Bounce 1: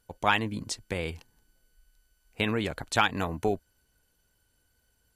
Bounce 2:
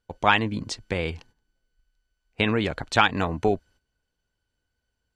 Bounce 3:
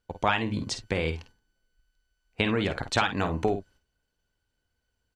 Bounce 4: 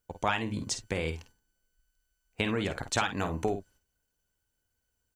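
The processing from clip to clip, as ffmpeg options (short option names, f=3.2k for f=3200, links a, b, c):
-af "lowpass=5.3k,agate=range=-12dB:threshold=-56dB:ratio=16:detection=peak,volume=5dB"
-af "acompressor=threshold=-22dB:ratio=3,aecho=1:1:50|60:0.316|0.133"
-af "aexciter=amount=1.9:drive=8.5:freq=6k,volume=-4dB"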